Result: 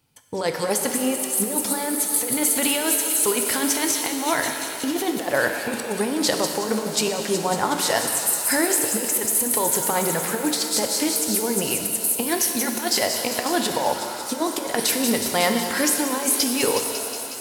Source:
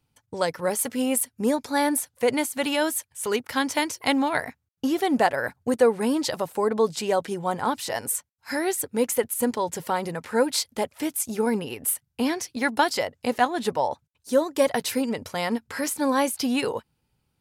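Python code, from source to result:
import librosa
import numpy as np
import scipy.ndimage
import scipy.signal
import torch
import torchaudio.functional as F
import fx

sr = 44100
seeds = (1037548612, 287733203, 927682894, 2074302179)

y = fx.high_shelf(x, sr, hz=4200.0, db=5.0)
y = fx.echo_wet_highpass(y, sr, ms=183, feedback_pct=76, hz=5000.0, wet_db=-5.0)
y = fx.over_compress(y, sr, threshold_db=-25.0, ratio=-0.5)
y = fx.low_shelf(y, sr, hz=78.0, db=-10.5)
y = fx.rev_shimmer(y, sr, seeds[0], rt60_s=2.5, semitones=7, shimmer_db=-8, drr_db=4.5)
y = F.gain(torch.from_numpy(y), 3.0).numpy()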